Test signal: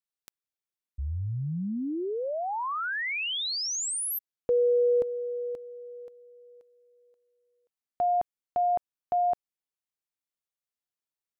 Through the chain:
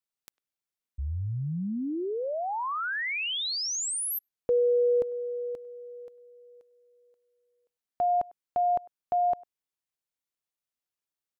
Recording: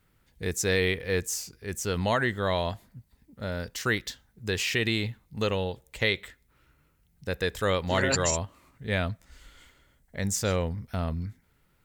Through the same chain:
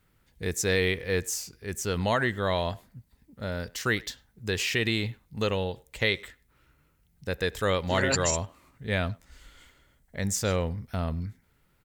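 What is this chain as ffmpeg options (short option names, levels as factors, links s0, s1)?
-filter_complex "[0:a]asplit=2[s0][s1];[s1]adelay=100,highpass=300,lowpass=3400,asoftclip=type=hard:threshold=0.106,volume=0.0708[s2];[s0][s2]amix=inputs=2:normalize=0"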